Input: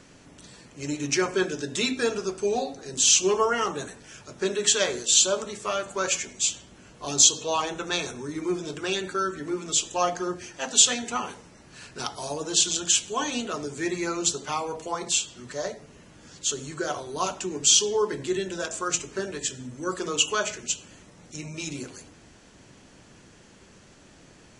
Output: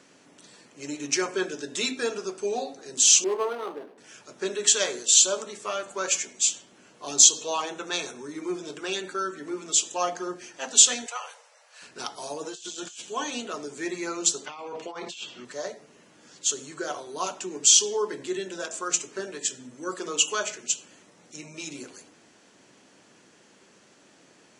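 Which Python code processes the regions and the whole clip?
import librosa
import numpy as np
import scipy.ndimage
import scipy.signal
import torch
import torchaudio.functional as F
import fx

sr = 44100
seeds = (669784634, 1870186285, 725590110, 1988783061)

y = fx.chain(x, sr, fx.median_filter(points=25),
    fx.cheby1_highpass(hz=320.0, order=2),
    fx.resample_linear(factor=6), at=(3.24, 3.98))
y = fx.chain(y, sr, fx.steep_highpass(hz=490.0, slope=72),
    fx.dynamic_eq(hz=840.0, q=1.1, threshold_db=-39.0, ratio=4.0, max_db=-5), at=(11.06, 11.82))
y = fx.chain(y, sr, fx.over_compress(threshold_db=-33.0, ratio=-1.0),
    fx.comb_fb(f0_hz=120.0, decay_s=0.17, harmonics='all', damping=0.0, mix_pct=60), at=(12.43, 13.02))
y = fx.chain(y, sr, fx.lowpass(hz=4500.0, slope=12),
    fx.peak_eq(hz=2700.0, db=5.0, octaves=0.69),
    fx.over_compress(threshold_db=-35.0, ratio=-1.0), at=(14.46, 15.45))
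y = scipy.signal.sosfilt(scipy.signal.butter(2, 240.0, 'highpass', fs=sr, output='sos'), y)
y = fx.dynamic_eq(y, sr, hz=7400.0, q=0.78, threshold_db=-33.0, ratio=4.0, max_db=5)
y = y * librosa.db_to_amplitude(-2.5)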